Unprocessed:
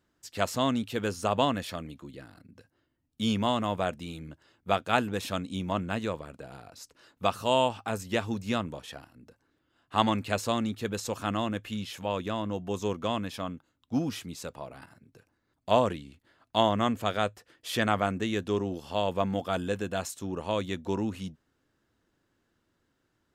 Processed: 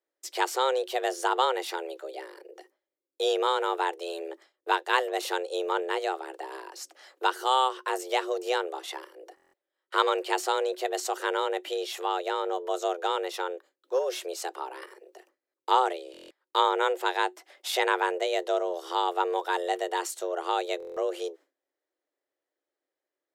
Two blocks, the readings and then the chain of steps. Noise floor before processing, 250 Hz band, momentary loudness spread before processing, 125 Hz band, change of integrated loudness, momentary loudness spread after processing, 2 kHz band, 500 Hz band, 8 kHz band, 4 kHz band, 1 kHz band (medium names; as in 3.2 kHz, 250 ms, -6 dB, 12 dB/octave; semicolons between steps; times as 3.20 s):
-76 dBFS, -8.5 dB, 17 LU, under -40 dB, +1.5 dB, 14 LU, +4.5 dB, +2.5 dB, +3.0 dB, +2.5 dB, +4.5 dB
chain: gate with hold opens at -48 dBFS; in parallel at +2 dB: compression, threshold -37 dBFS, peak gain reduction 18 dB; on the sum: frequency shift +260 Hz; buffer glitch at 9.35/16.12/20.78 s, samples 1024, times 7; trim -1 dB